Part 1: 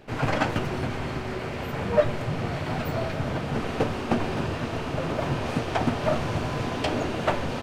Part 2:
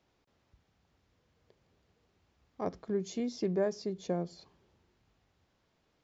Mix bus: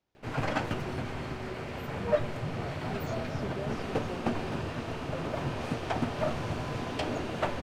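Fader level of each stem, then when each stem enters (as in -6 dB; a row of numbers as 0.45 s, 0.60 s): -6.0 dB, -9.0 dB; 0.15 s, 0.00 s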